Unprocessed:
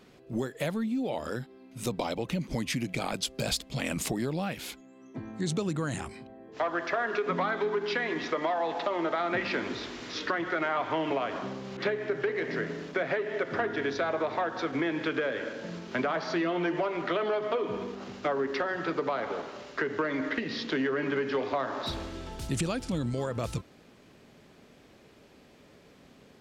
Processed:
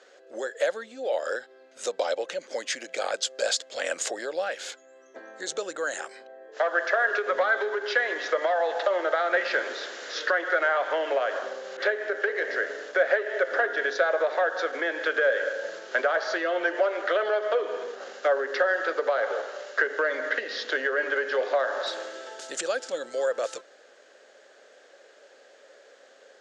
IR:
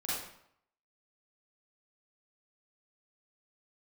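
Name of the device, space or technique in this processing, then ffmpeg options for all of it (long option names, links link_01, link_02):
phone speaker on a table: -af "highpass=frequency=460:width=0.5412,highpass=frequency=460:width=1.3066,equalizer=frequency=540:width_type=q:width=4:gain=9,equalizer=frequency=1000:width_type=q:width=4:gain=-7,equalizer=frequency=1600:width_type=q:width=4:gain=9,equalizer=frequency=2400:width_type=q:width=4:gain=-6,equalizer=frequency=6900:width_type=q:width=4:gain=6,lowpass=frequency=7900:width=0.5412,lowpass=frequency=7900:width=1.3066,volume=3dB"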